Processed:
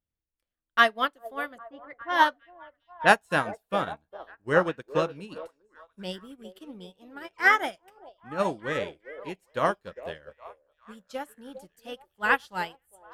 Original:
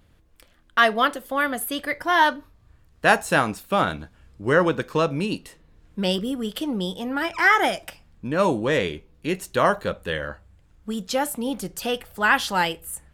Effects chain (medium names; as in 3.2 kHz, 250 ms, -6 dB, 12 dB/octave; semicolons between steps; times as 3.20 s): 1.58–3.16 s: level-controlled noise filter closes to 440 Hz, open at -15 dBFS; repeats whose band climbs or falls 405 ms, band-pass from 520 Hz, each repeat 0.7 oct, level -3 dB; upward expansion 2.5:1, over -35 dBFS